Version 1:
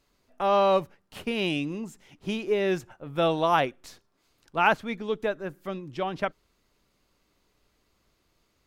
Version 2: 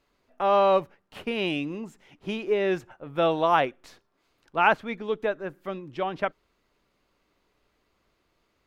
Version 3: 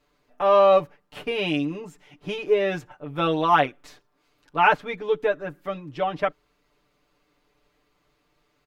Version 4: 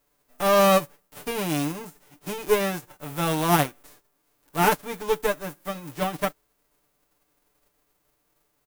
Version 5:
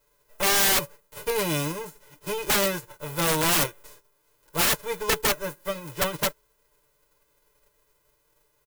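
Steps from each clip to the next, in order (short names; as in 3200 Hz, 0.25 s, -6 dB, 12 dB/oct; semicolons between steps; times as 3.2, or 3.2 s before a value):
tone controls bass -5 dB, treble -9 dB; gain +1.5 dB
comb 6.8 ms, depth 93%
spectral whitening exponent 0.3; bell 3700 Hz -10 dB 2.7 oct; gain +1 dB
comb 2 ms, depth 85%; wrapped overs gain 16 dB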